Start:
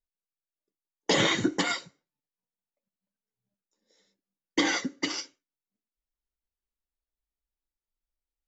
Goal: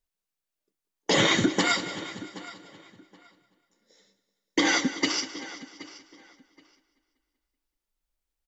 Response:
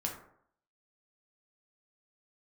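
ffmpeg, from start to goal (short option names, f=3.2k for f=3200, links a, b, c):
-filter_complex "[0:a]asplit=2[a][b];[b]aecho=0:1:191|382|573|764|955|1146:0.158|0.0919|0.0533|0.0309|0.0179|0.0104[c];[a][c]amix=inputs=2:normalize=0,alimiter=limit=-17.5dB:level=0:latency=1:release=133,asplit=2[d][e];[e]adelay=774,lowpass=f=4.6k:p=1,volume=-17dB,asplit=2[f][g];[g]adelay=774,lowpass=f=4.6k:p=1,volume=0.22[h];[f][h]amix=inputs=2:normalize=0[i];[d][i]amix=inputs=2:normalize=0,volume=6dB"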